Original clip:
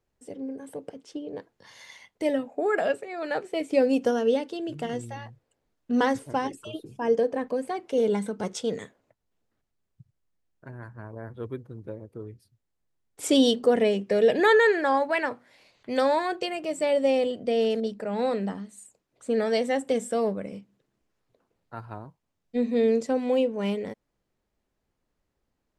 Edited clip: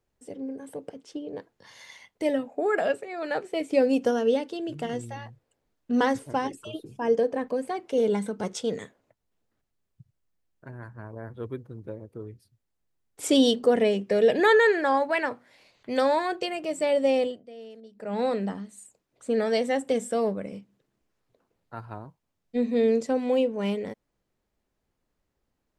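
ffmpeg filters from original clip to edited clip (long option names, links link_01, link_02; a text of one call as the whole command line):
ffmpeg -i in.wav -filter_complex "[0:a]asplit=3[link_01][link_02][link_03];[link_01]atrim=end=17.43,asetpts=PTS-STARTPTS,afade=type=out:start_time=17.22:duration=0.21:silence=0.105925[link_04];[link_02]atrim=start=17.43:end=17.93,asetpts=PTS-STARTPTS,volume=-19.5dB[link_05];[link_03]atrim=start=17.93,asetpts=PTS-STARTPTS,afade=type=in:duration=0.21:silence=0.105925[link_06];[link_04][link_05][link_06]concat=n=3:v=0:a=1" out.wav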